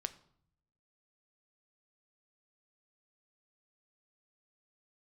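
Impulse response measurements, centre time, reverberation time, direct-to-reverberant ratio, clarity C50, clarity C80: 4 ms, 0.65 s, 11.0 dB, 16.5 dB, 19.5 dB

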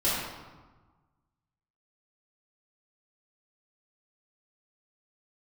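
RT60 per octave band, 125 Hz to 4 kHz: 1.8, 1.5, 1.2, 1.4, 1.0, 0.80 s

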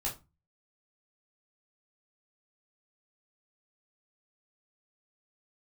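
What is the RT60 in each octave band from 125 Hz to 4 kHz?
0.50, 0.40, 0.25, 0.25, 0.20, 0.20 s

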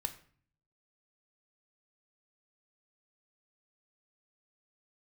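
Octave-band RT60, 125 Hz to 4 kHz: 0.90, 0.75, 0.50, 0.50, 0.45, 0.40 s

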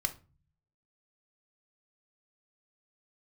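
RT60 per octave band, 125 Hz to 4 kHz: 0.90, 0.70, 0.35, 0.35, 0.30, 0.25 s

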